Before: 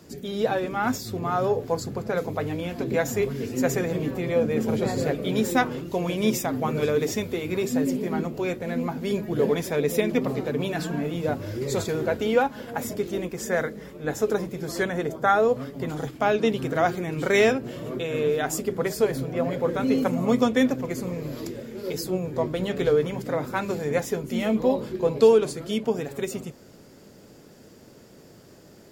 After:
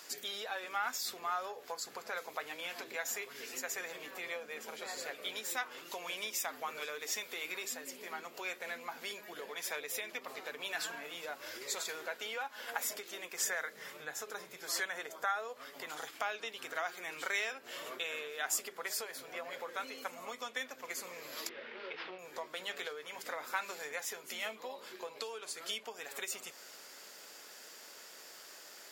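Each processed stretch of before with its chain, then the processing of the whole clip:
13.73–14.57 bell 130 Hz +13.5 dB 0.83 oct + de-hum 105.5 Hz, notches 38
21.49–22.19 CVSD 32 kbps + LPF 3000 Hz 24 dB/oct
whole clip: compressor 6:1, threshold -34 dBFS; HPF 1200 Hz 12 dB/oct; gain +6.5 dB

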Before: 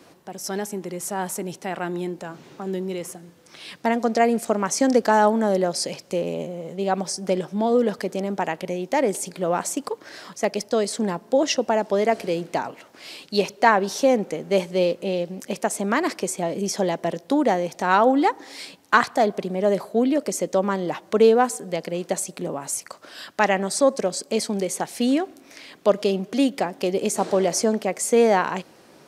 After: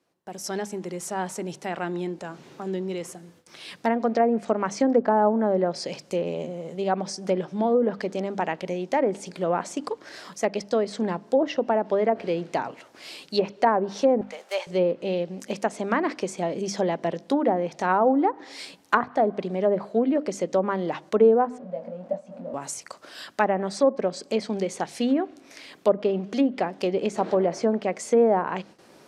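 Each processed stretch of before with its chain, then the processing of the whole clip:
14.21–14.67 block floating point 5-bit + HPF 640 Hz 24 dB/oct
21.58–22.54 zero-crossing step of -28 dBFS + double band-pass 370 Hz, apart 1.3 oct + doubler 22 ms -6.5 dB
whole clip: gate with hold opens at -40 dBFS; notches 50/100/150/200/250/300 Hz; treble ducked by the level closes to 940 Hz, closed at -14.5 dBFS; gain -1.5 dB

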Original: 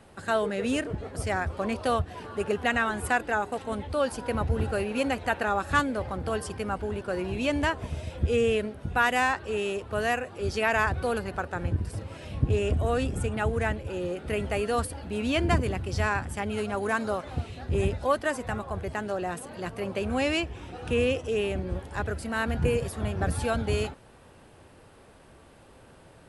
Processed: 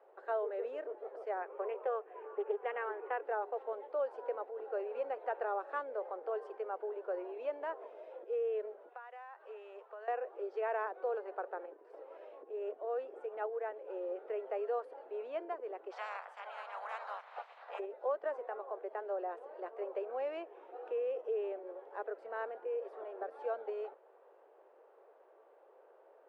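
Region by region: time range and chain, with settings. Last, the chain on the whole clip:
1.42–3.25 speaker cabinet 300–2900 Hz, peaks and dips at 410 Hz +5 dB, 660 Hz -6 dB, 2400 Hz +6 dB + Doppler distortion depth 0.14 ms
8.89–10.08 HPF 800 Hz + compressor, threshold -36 dBFS
15.9–17.78 spectral limiter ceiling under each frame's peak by 27 dB + HPF 750 Hz 24 dB/oct
whole clip: Bessel low-pass 620 Hz, order 2; compressor 6:1, threshold -28 dBFS; steep high-pass 410 Hz 48 dB/oct; gain -1.5 dB

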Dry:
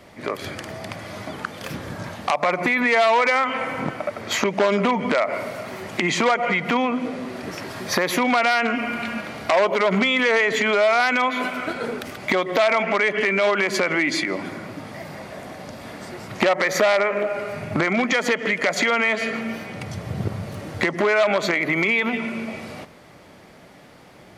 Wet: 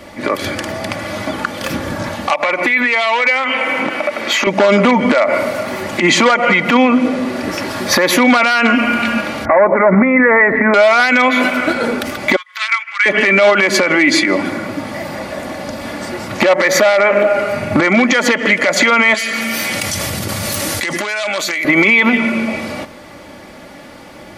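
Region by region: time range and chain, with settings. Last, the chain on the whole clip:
2.33–4.47 HPF 240 Hz + bell 2600 Hz +7 dB 1.1 oct + compressor 3:1, threshold -25 dBFS
9.45–10.74 elliptic low-pass 2000 Hz + low shelf 120 Hz +11 dB
12.36–13.06 steep high-pass 1200 Hz + upward expander 2.5:1, over -32 dBFS
19.14–21.65 pre-emphasis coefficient 0.9 + fast leveller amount 100%
whole clip: comb 3.5 ms, depth 45%; maximiser +11.5 dB; gain -1 dB

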